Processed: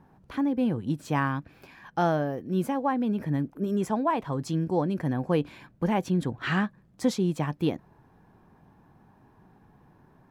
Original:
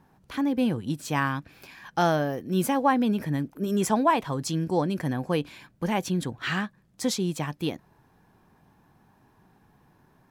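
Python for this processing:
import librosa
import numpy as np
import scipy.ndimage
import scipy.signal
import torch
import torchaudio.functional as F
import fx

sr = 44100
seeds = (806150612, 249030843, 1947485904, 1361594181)

y = fx.high_shelf(x, sr, hz=2300.0, db=-11.5)
y = fx.rider(y, sr, range_db=5, speed_s=0.5)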